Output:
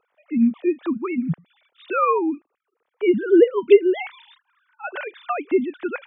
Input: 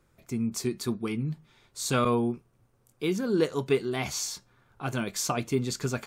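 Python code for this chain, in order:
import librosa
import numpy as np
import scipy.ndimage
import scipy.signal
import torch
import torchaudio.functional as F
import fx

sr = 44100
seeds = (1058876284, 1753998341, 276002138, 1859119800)

y = fx.sine_speech(x, sr)
y = y * librosa.db_to_amplitude(8.5)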